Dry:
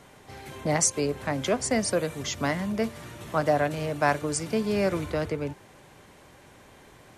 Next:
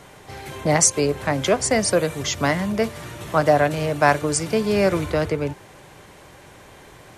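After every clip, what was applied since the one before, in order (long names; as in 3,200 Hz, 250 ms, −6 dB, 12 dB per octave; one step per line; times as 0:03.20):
parametric band 240 Hz −6 dB 0.31 octaves
level +7 dB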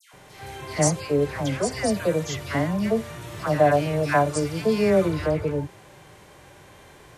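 harmonic and percussive parts rebalanced percussive −10 dB
all-pass dispersion lows, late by 136 ms, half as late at 1,600 Hz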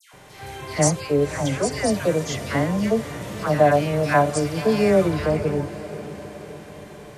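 feedback delay with all-pass diffusion 565 ms, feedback 57%, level −14 dB
level +2 dB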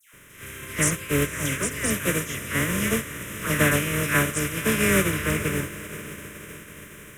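compressing power law on the bin magnitudes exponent 0.5
phaser with its sweep stopped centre 1,900 Hz, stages 4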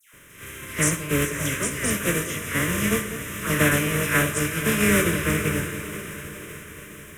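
delay that swaps between a low-pass and a high-pass 202 ms, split 1,100 Hz, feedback 75%, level −11.5 dB
convolution reverb RT60 0.50 s, pre-delay 6 ms, DRR 7.5 dB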